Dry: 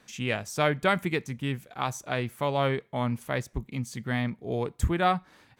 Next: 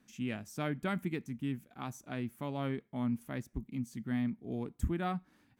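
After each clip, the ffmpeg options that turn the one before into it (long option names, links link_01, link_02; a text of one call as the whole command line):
ffmpeg -i in.wav -af "equalizer=frequency=125:width_type=o:width=1:gain=-3,equalizer=frequency=250:width_type=o:width=1:gain=8,equalizer=frequency=500:width_type=o:width=1:gain=-8,equalizer=frequency=1000:width_type=o:width=1:gain=-5,equalizer=frequency=2000:width_type=o:width=1:gain=-4,equalizer=frequency=4000:width_type=o:width=1:gain=-7,equalizer=frequency=8000:width_type=o:width=1:gain=-4,volume=-7dB" out.wav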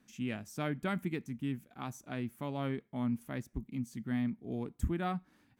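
ffmpeg -i in.wav -af anull out.wav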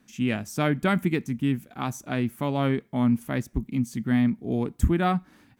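ffmpeg -i in.wav -af "dynaudnorm=framelen=110:gausssize=3:maxgain=5dB,volume=6.5dB" out.wav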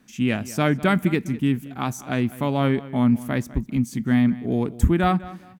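ffmpeg -i in.wav -filter_complex "[0:a]asplit=2[link_01][link_02];[link_02]adelay=201,lowpass=frequency=4300:poles=1,volume=-17.5dB,asplit=2[link_03][link_04];[link_04]adelay=201,lowpass=frequency=4300:poles=1,volume=0.27[link_05];[link_01][link_03][link_05]amix=inputs=3:normalize=0,volume=3.5dB" out.wav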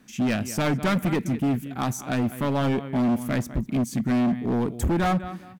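ffmpeg -i in.wav -af "asoftclip=type=hard:threshold=-21.5dB,volume=2dB" out.wav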